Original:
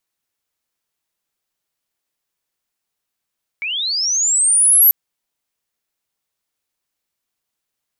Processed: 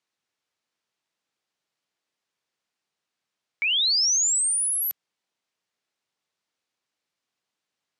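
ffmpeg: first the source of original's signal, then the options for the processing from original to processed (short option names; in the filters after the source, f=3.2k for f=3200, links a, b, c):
-f lavfi -i "aevalsrc='pow(10,(-20.5+14*t/1.29)/20)*sin(2*PI*(2200*t+9800*t*t/(2*1.29)))':d=1.29:s=44100"
-af "highpass=130,lowpass=5.8k"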